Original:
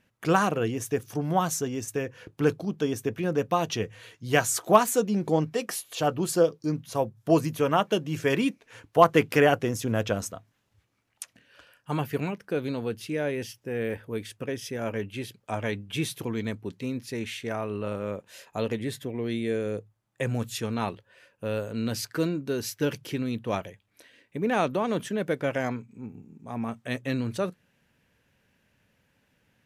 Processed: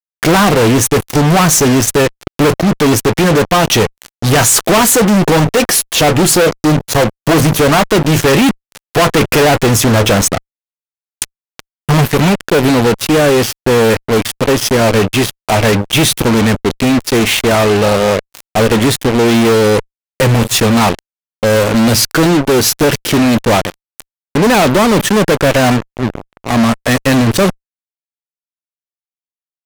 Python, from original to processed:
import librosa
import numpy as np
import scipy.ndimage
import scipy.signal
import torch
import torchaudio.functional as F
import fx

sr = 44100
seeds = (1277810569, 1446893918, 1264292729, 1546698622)

y = fx.low_shelf(x, sr, hz=180.0, db=7.5, at=(10.31, 12.04))
y = fx.fuzz(y, sr, gain_db=43.0, gate_db=-39.0)
y = y * 10.0 ** (6.0 / 20.0)